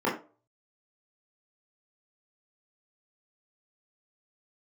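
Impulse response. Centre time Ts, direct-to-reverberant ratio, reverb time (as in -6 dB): 30 ms, -7.0 dB, 0.35 s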